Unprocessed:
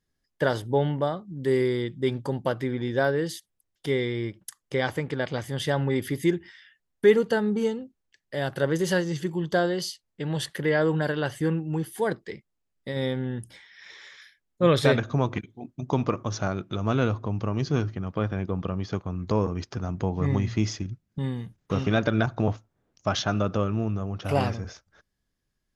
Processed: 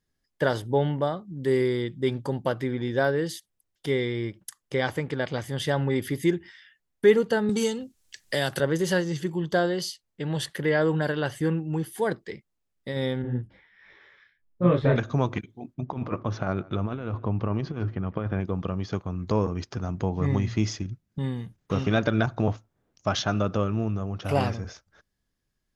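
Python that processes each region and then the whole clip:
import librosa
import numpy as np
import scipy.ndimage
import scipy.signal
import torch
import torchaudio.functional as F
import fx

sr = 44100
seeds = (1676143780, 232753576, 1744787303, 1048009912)

y = fx.chain(x, sr, fx.peak_eq(hz=8700.0, db=15.0, octaves=2.7),
    fx.band_squash(depth_pct=70), at=(7.49, 8.6))
y = fx.chain(y, sr, fx.lowpass(hz=2500.0, slope=12),
    fx.tilt_eq(slope=-2.0),
    fx.detune_double(cents=51), at=(13.22, 14.96))
y = fx.chain(y, sr, fx.lowpass(hz=2700.0, slope=12),
    fx.over_compress(threshold_db=-27.0, ratio=-0.5),
    fx.echo_single(ms=154, db=-22.5), at=(15.74, 18.41))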